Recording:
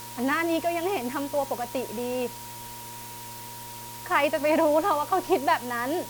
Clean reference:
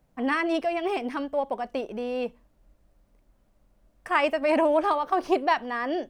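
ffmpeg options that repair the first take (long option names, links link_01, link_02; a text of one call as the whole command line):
ffmpeg -i in.wav -af "bandreject=frequency=116.2:width_type=h:width=4,bandreject=frequency=232.4:width_type=h:width=4,bandreject=frequency=348.6:width_type=h:width=4,bandreject=frequency=464.8:width_type=h:width=4,bandreject=frequency=581:width_type=h:width=4,bandreject=frequency=950:width=30,afwtdn=0.0079" out.wav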